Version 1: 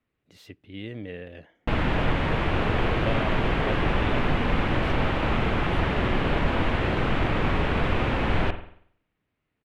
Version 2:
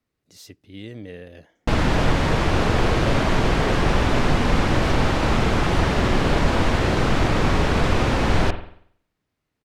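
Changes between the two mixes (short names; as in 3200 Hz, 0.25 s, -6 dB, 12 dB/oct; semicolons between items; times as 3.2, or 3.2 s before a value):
background +5.0 dB; master: add resonant high shelf 4000 Hz +11 dB, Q 1.5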